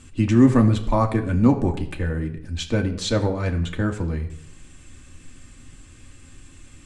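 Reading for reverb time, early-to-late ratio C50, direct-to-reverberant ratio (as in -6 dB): 0.70 s, 12.5 dB, 2.0 dB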